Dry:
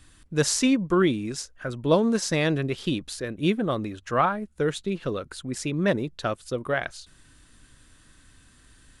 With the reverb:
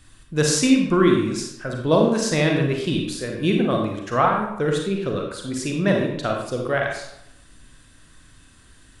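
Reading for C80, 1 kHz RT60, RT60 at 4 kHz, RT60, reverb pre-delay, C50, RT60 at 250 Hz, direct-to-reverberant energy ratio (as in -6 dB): 6.0 dB, 0.80 s, 0.55 s, 0.80 s, 34 ms, 3.0 dB, 0.75 s, 0.5 dB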